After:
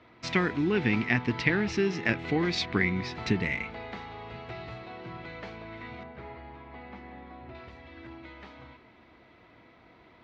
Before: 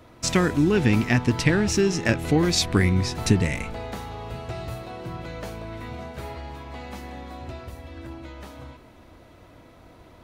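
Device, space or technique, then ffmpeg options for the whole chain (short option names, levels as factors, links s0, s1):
guitar cabinet: -filter_complex "[0:a]asettb=1/sr,asplit=3[s0][s1][s2];[s0]atrim=end=6.034[s3];[s1]atrim=start=6.03:end=7.55,asetpts=PTS-STARTPTS,afade=t=in:d=0.004:c=qsin,afade=t=out:st=1.516:d=0.004:c=qsin,lowpass=f=1300:p=1[s4];[s2]atrim=start=7.546[s5];[s3][s4]acrossfade=d=0.004:c1=hsin:c2=qsin[s6];[s6][s5]acrossfade=d=0.004:c1=qsin:c2=hsin,highpass=90,equalizer=f=93:t=q:w=4:g=-9,equalizer=f=150:t=q:w=4:g=-5,equalizer=f=280:t=q:w=4:g=-3,equalizer=f=560:t=q:w=4:g=-6,equalizer=f=2100:t=q:w=4:g=7,lowpass=f=4400:w=0.5412,lowpass=f=4400:w=1.3066,volume=0.596"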